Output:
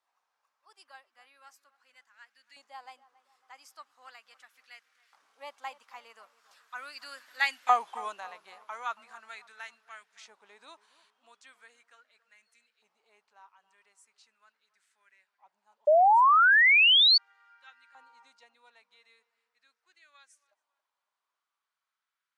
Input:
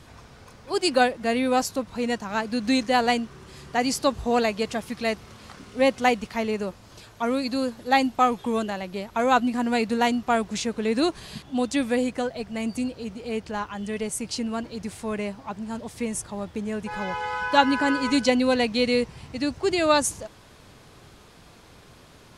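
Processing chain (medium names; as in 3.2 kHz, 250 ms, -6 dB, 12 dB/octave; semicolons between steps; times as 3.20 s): Doppler pass-by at 7.59 s, 23 m/s, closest 8.8 m; LFO high-pass saw up 0.39 Hz 850–1800 Hz; on a send: filtered feedback delay 277 ms, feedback 50%, low-pass 1.5 kHz, level -17 dB; on the sum: painted sound rise, 15.87–17.18 s, 580–4600 Hz -13 dBFS; trim -6.5 dB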